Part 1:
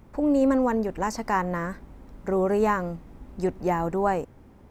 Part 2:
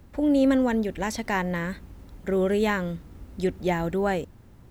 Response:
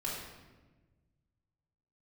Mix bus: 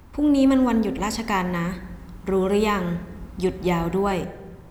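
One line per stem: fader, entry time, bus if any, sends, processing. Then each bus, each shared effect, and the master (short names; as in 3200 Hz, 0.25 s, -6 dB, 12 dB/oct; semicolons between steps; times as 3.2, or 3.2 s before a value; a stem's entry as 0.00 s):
+2.0 dB, 0.00 s, no send, resonant low shelf 600 Hz -14 dB, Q 1.5
+1.5 dB, 0.00 s, send -12 dB, dry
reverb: on, RT60 1.3 s, pre-delay 3 ms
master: dry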